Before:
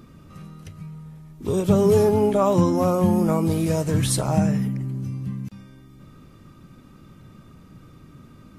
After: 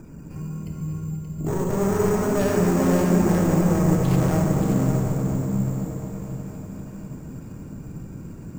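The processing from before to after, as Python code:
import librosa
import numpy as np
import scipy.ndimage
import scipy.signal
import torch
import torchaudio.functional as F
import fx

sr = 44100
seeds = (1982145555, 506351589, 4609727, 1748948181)

p1 = fx.lower_of_two(x, sr, delay_ms=0.39)
p2 = fx.spec_gate(p1, sr, threshold_db=-30, keep='strong')
p3 = fx.lowpass(p2, sr, hz=1400.0, slope=6)
p4 = fx.over_compress(p3, sr, threshold_db=-26.0, ratio=-1.0)
p5 = p3 + F.gain(torch.from_numpy(p4), 0.0).numpy()
p6 = np.clip(p5, -10.0 ** (-19.5 / 20.0), 10.0 ** (-19.5 / 20.0))
p7 = p6 + 10.0 ** (-7.0 / 20.0) * np.pad(p6, (int(578 * sr / 1000.0), 0))[:len(p6)]
p8 = fx.room_shoebox(p7, sr, seeds[0], volume_m3=200.0, walls='hard', distance_m=0.51)
p9 = np.repeat(p8[::6], 6)[:len(p8)]
p10 = fx.echo_crushed(p9, sr, ms=241, feedback_pct=80, bits=9, wet_db=-13.0)
y = F.gain(torch.from_numpy(p10), -4.0).numpy()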